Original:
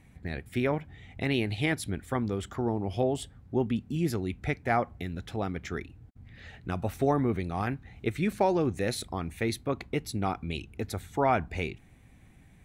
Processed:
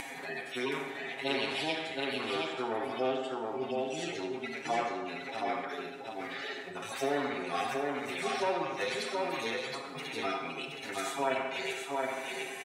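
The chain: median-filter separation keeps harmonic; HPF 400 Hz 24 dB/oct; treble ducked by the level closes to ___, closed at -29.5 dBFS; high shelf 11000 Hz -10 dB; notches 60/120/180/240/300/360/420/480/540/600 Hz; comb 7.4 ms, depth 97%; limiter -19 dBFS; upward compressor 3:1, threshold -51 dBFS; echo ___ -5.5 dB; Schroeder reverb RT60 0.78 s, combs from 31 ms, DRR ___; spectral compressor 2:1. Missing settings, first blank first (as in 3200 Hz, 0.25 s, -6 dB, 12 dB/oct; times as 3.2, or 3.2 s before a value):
3000 Hz, 0.722 s, 6.5 dB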